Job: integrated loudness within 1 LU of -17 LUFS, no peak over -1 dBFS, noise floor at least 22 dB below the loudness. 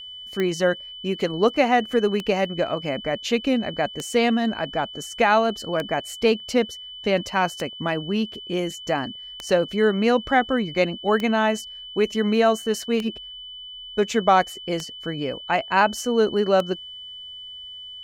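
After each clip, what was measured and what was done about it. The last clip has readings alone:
clicks found 10; steady tone 3 kHz; tone level -36 dBFS; loudness -23.0 LUFS; peak level -5.0 dBFS; loudness target -17.0 LUFS
-> de-click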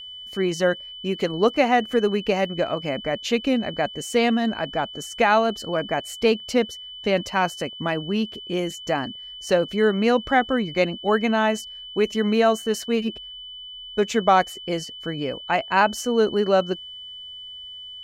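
clicks found 0; steady tone 3 kHz; tone level -36 dBFS
-> band-stop 3 kHz, Q 30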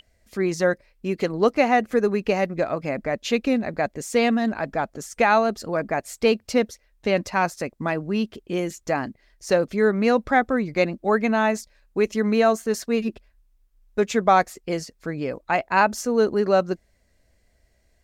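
steady tone not found; loudness -23.0 LUFS; peak level -4.5 dBFS; loudness target -17.0 LUFS
-> trim +6 dB; peak limiter -1 dBFS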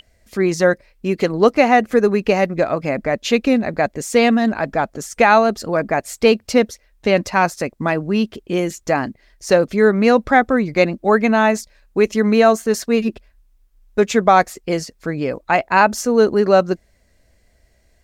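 loudness -17.0 LUFS; peak level -1.0 dBFS; noise floor -59 dBFS

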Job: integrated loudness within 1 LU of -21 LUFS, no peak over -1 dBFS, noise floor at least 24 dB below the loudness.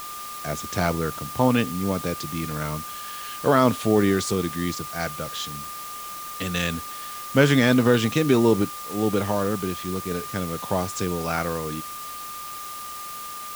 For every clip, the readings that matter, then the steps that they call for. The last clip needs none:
steady tone 1.2 kHz; tone level -35 dBFS; noise floor -36 dBFS; noise floor target -49 dBFS; loudness -24.5 LUFS; peak level -2.5 dBFS; loudness target -21.0 LUFS
-> band-stop 1.2 kHz, Q 30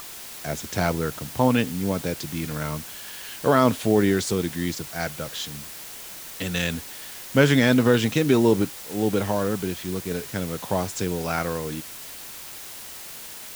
steady tone not found; noise floor -39 dBFS; noise floor target -48 dBFS
-> noise print and reduce 9 dB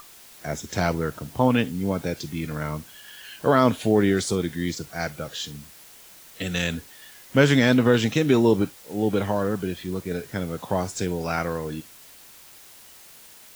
noise floor -48 dBFS; loudness -24.0 LUFS; peak level -3.0 dBFS; loudness target -21.0 LUFS
-> trim +3 dB; peak limiter -1 dBFS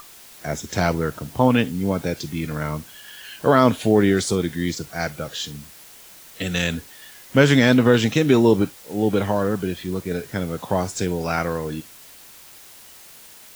loudness -21.0 LUFS; peak level -1.0 dBFS; noise floor -45 dBFS

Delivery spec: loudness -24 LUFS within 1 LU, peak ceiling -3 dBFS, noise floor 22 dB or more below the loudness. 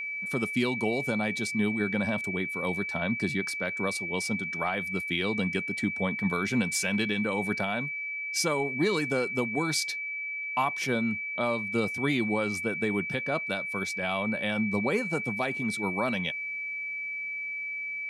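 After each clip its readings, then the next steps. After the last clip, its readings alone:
steady tone 2.3 kHz; tone level -32 dBFS; loudness -29.0 LUFS; peak level -14.5 dBFS; loudness target -24.0 LUFS
-> band-stop 2.3 kHz, Q 30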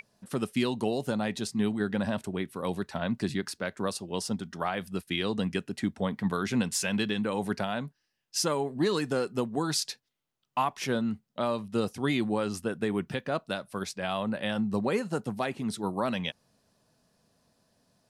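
steady tone not found; loudness -31.0 LUFS; peak level -15.5 dBFS; loudness target -24.0 LUFS
-> trim +7 dB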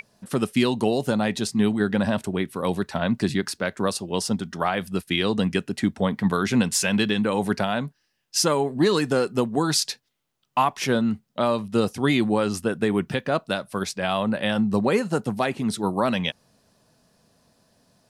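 loudness -24.0 LUFS; peak level -8.5 dBFS; noise floor -72 dBFS

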